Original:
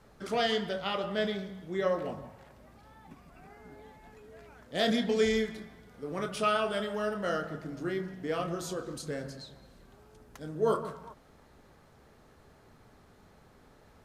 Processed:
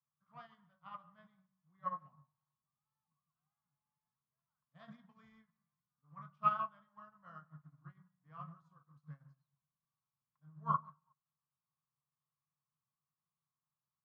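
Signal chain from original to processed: double band-pass 400 Hz, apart 2.9 oct; upward expander 2.5:1, over -57 dBFS; gain +8 dB

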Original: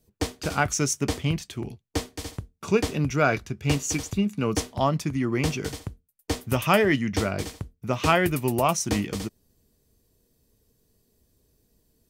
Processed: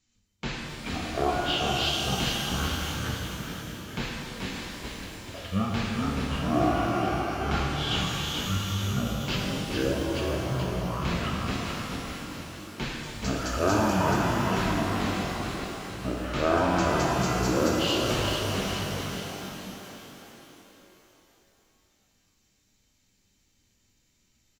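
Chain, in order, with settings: low shelf 500 Hz -7 dB; wide varispeed 0.492×; on a send: frequency-shifting echo 0.43 s, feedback 50%, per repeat +44 Hz, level -5 dB; on the sum: shimmer reverb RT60 3 s, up +12 st, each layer -8 dB, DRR -1.5 dB; gain -4.5 dB

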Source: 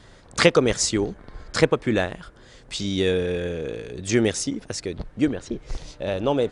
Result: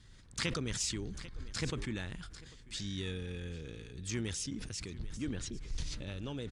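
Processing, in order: passive tone stack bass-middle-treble 6-0-2; compressor 1.5:1, threshold -45 dBFS, peak gain reduction 5.5 dB; added harmonics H 4 -31 dB, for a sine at -22.5 dBFS; harmoniser -12 st -15 dB; echo 0.795 s -21 dB; sustainer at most 30 dB/s; gain +5.5 dB

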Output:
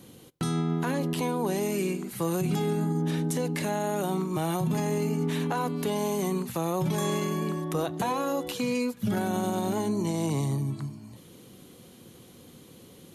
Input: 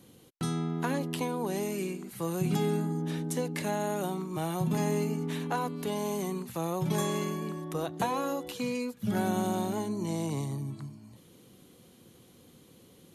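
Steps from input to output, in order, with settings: on a send at -21.5 dB: reverb RT60 0.50 s, pre-delay 3 ms; on the sum: limiter -25.5 dBFS, peak gain reduction 7.5 dB; gain +6 dB

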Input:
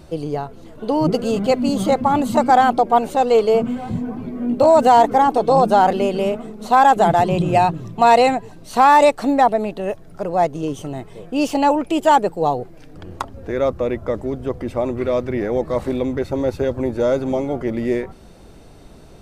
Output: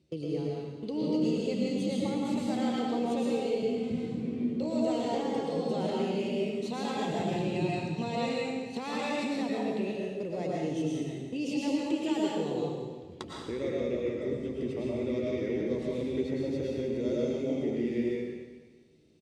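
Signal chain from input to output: gate -32 dBFS, range -19 dB; band shelf 1000 Hz -15 dB; limiter -14.5 dBFS, peak gain reduction 8 dB; compressor 2.5:1, threshold -33 dBFS, peak gain reduction 10 dB; BPF 110–6800 Hz; doubler 13 ms -13 dB; digital reverb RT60 1.4 s, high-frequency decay 1×, pre-delay 75 ms, DRR -4.5 dB; gain -4 dB

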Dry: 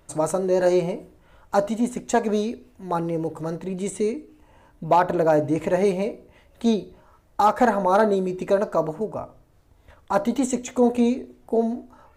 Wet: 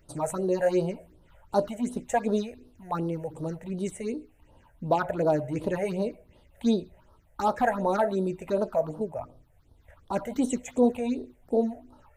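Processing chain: phaser stages 6, 2.7 Hz, lowest notch 280–2200 Hz; gain -3 dB

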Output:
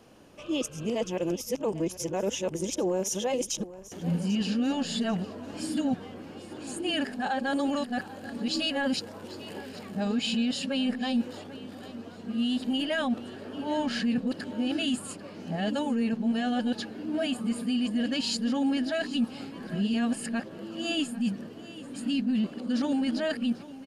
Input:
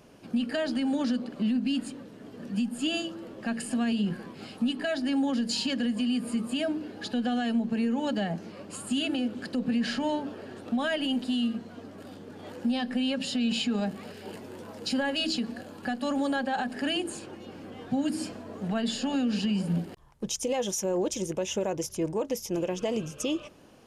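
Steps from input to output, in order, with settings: whole clip reversed; feedback echo 0.793 s, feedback 31%, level -17 dB

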